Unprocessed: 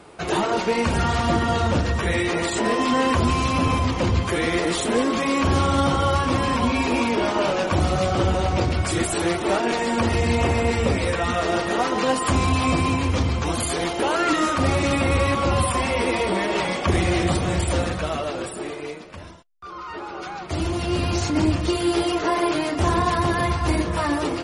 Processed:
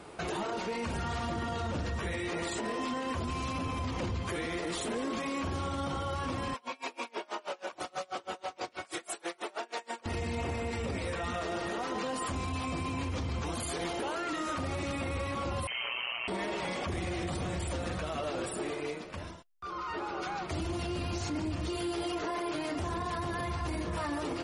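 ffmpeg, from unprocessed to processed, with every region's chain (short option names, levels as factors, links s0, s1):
-filter_complex "[0:a]asettb=1/sr,asplit=3[s0][s1][s2];[s0]atrim=end=6.544[s3];[s1]atrim=start=6.54:end=10.06,asetpts=PTS-STARTPTS,afade=t=in:d=0.004:c=qsin,afade=t=out:st=3.516:d=0.004:c=qsin,highpass=500,aeval=exprs='val(0)*pow(10,-35*(0.5-0.5*cos(2*PI*6.2*n/s))/20)':c=same[s4];[s2]atrim=start=10.056[s5];[s3][s4]acrossfade=d=0.004:c1=hsin:c2=qsin[s6];[s6][s5]acrossfade=d=0.004:c1=qsin:c2=hsin,asettb=1/sr,asplit=3[s7][s8][s9];[s7]atrim=end=15.674[s10];[s8]atrim=start=15.67:end=16.28,asetpts=PTS-STARTPTS,afade=t=in:d=0.004:c=qsin,afade=t=out:st=0.606:d=0.004:c=qsin,tremolo=f=120:d=0.824,lowpass=f=2700:t=q:w=0.5098,lowpass=f=2700:t=q:w=0.6013,lowpass=f=2700:t=q:w=0.9,lowpass=f=2700:t=q:w=2.563,afreqshift=-3200[s11];[s9]atrim=start=16.276[s12];[s10][s11]acrossfade=d=0.004:c1=hsin:c2=qsin[s13];[s13][s12]acrossfade=d=0.004:c1=qsin:c2=hsin,acompressor=threshold=0.0355:ratio=3,alimiter=limit=0.0631:level=0:latency=1:release=22,volume=0.75"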